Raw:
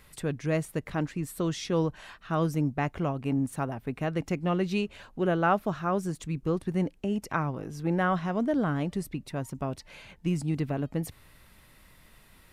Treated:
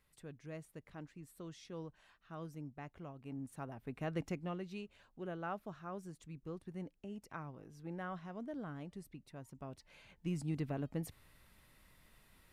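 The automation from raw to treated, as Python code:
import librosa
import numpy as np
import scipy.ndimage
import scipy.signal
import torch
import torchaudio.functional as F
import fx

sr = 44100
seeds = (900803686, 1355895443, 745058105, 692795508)

y = fx.gain(x, sr, db=fx.line((3.13, -20.0), (4.21, -8.0), (4.66, -17.5), (9.43, -17.5), (10.46, -9.0)))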